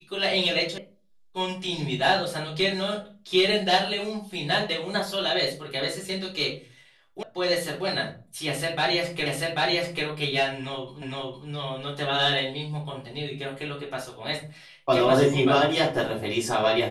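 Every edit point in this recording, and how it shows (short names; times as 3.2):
0.78 sound cut off
7.23 sound cut off
9.26 repeat of the last 0.79 s
11.02 repeat of the last 0.46 s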